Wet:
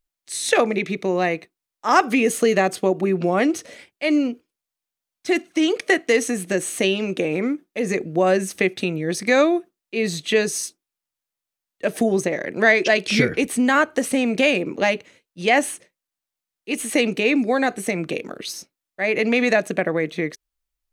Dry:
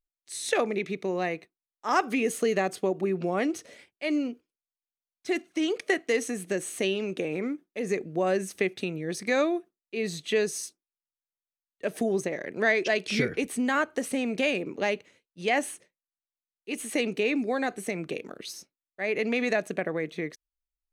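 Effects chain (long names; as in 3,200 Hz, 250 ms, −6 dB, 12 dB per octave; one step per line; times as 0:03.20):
notch filter 410 Hz, Q 12
level +8.5 dB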